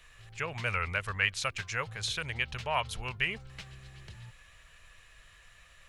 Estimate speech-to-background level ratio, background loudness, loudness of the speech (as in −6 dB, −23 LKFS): 16.5 dB, −49.5 LKFS, −33.0 LKFS